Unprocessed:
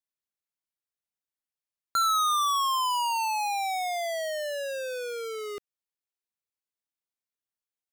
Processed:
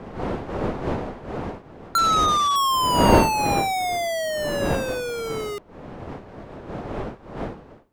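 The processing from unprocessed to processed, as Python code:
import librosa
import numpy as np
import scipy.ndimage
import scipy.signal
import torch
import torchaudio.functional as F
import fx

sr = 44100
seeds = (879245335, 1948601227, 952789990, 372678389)

y = fx.cvsd(x, sr, bps=64000, at=(1.98, 2.56))
y = fx.dmg_wind(y, sr, seeds[0], corner_hz=570.0, level_db=-33.0)
y = F.gain(torch.from_numpy(y), 5.5).numpy()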